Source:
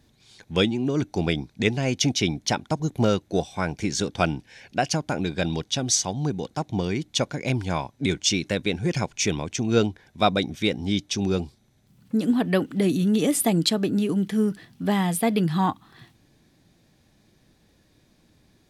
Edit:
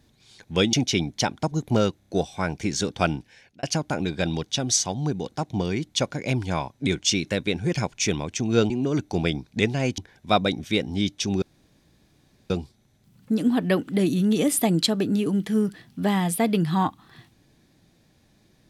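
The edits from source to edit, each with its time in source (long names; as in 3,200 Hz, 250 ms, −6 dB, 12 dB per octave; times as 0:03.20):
0:00.73–0:02.01: move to 0:09.89
0:03.27: stutter 0.03 s, 4 plays
0:04.35–0:04.82: fade out
0:11.33: splice in room tone 1.08 s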